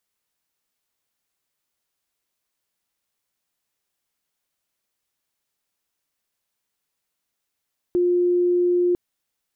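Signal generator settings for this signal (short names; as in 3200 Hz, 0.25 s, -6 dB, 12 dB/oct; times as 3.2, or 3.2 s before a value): tone sine 354 Hz -16 dBFS 1.00 s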